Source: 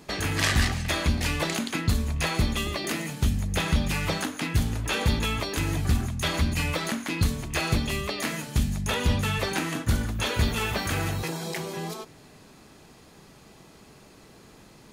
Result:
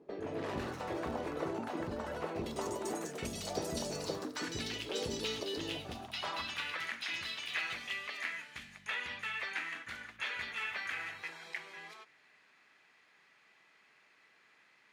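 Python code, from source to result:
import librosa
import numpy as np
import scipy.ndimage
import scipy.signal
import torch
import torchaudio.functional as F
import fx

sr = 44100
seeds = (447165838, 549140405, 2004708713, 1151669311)

y = fx.filter_sweep_bandpass(x, sr, from_hz=420.0, to_hz=2000.0, start_s=5.59, end_s=6.9, q=2.5)
y = fx.echo_pitch(y, sr, ms=203, semitones=7, count=3, db_per_echo=-3.0)
y = y * 10.0 ** (-2.5 / 20.0)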